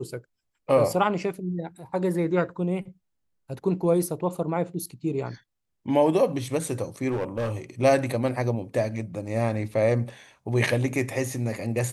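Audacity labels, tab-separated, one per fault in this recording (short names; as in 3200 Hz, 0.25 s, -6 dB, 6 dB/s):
7.100000	7.530000	clipped -23 dBFS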